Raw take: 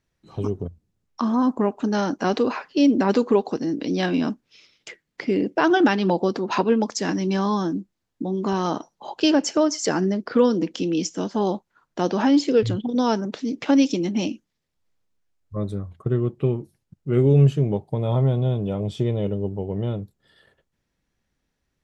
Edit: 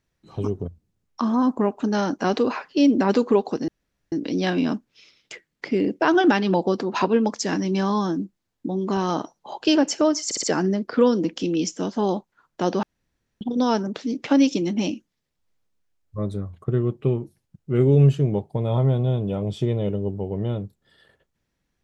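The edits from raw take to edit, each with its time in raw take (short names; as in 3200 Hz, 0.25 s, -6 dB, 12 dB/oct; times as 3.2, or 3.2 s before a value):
3.68 insert room tone 0.44 s
9.81 stutter 0.06 s, 4 plays
12.21–12.79 room tone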